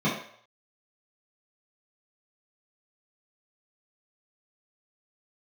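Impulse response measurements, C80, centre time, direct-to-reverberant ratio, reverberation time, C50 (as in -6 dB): 8.0 dB, 39 ms, -9.5 dB, 0.60 s, 4.5 dB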